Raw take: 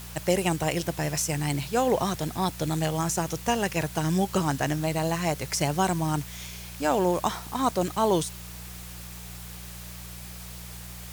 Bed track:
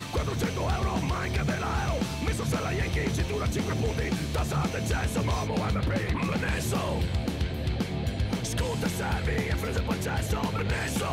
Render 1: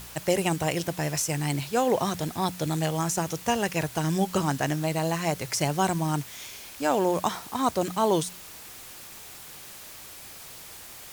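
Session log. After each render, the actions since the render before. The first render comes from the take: de-hum 60 Hz, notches 3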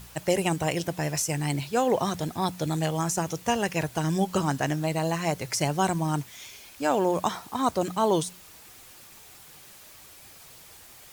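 noise reduction 6 dB, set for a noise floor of -44 dBFS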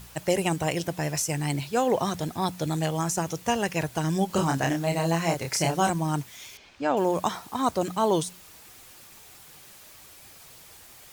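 4.27–5.90 s: doubling 30 ms -3.5 dB; 6.57–6.97 s: distance through air 150 m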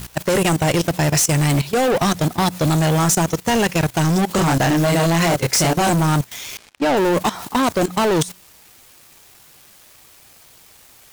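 waveshaping leveller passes 5; level held to a coarse grid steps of 16 dB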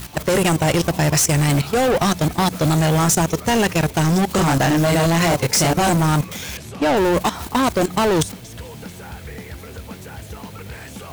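add bed track -6.5 dB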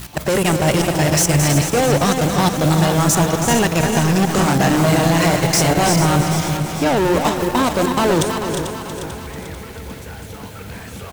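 backward echo that repeats 221 ms, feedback 69%, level -7 dB; delay 324 ms -9 dB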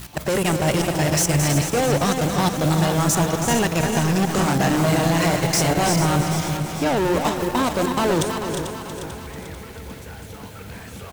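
trim -4 dB

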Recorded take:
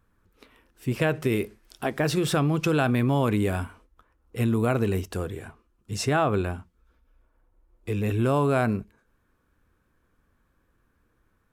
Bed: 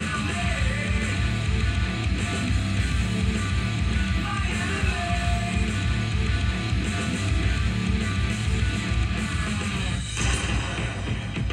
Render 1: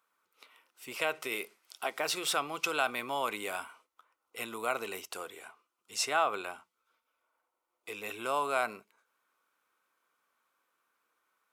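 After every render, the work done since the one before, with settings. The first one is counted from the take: high-pass 890 Hz 12 dB/octave; band-stop 1.7 kHz, Q 5.1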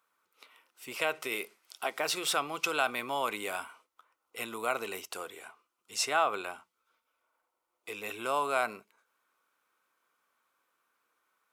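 trim +1 dB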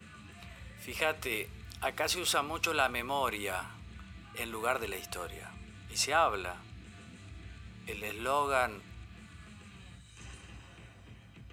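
add bed -25 dB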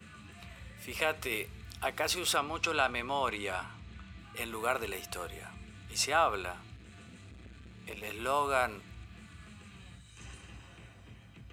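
2.36–4.19 s: low-pass 7 kHz; 6.76–8.13 s: transformer saturation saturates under 990 Hz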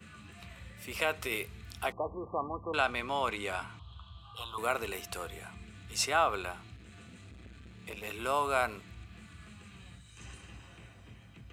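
1.92–2.74 s: brick-wall FIR low-pass 1.2 kHz; 3.79–4.58 s: FFT filter 130 Hz 0 dB, 230 Hz -19 dB, 470 Hz -10 dB, 1.1 kHz +8 dB, 2.1 kHz -30 dB, 3.2 kHz +8 dB, 6 kHz -12 dB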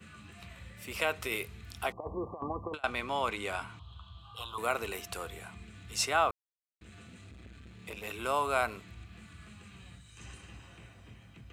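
2.00–2.84 s: compressor with a negative ratio -37 dBFS, ratio -0.5; 6.31–6.81 s: mute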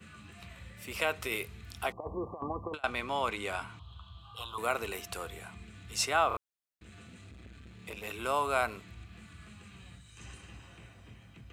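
6.28 s: stutter in place 0.03 s, 3 plays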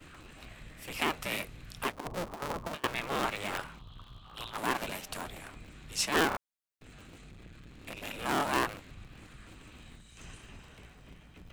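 cycle switcher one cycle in 2, inverted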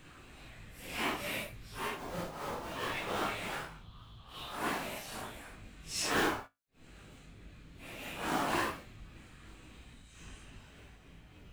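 phase randomisation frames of 200 ms; feedback comb 54 Hz, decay 0.2 s, harmonics all, mix 50%

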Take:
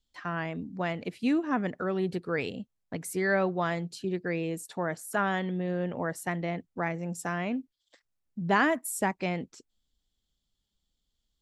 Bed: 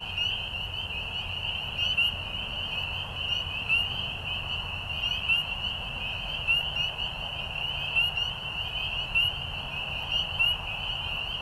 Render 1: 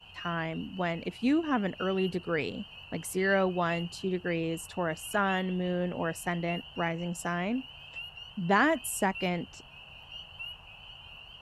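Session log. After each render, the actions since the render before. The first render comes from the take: add bed -16.5 dB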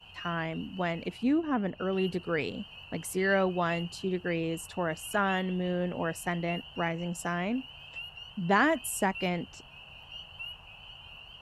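1.23–1.93 s: treble shelf 2 kHz -10.5 dB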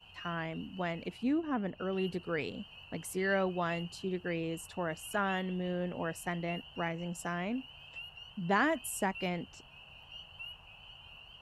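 trim -4.5 dB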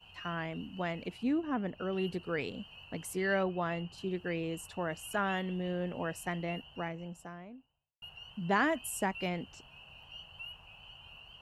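3.43–3.98 s: treble shelf 3.9 kHz -11.5 dB; 6.33–8.02 s: studio fade out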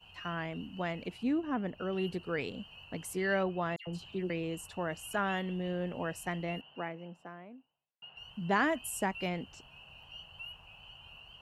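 3.76–4.30 s: phase dispersion lows, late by 110 ms, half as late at 2 kHz; 6.61–8.17 s: three-band isolator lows -23 dB, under 160 Hz, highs -22 dB, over 3.9 kHz

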